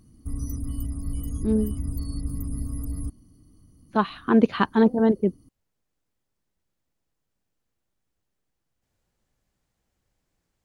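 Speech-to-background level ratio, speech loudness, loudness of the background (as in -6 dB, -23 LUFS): 10.0 dB, -23.0 LUFS, -33.0 LUFS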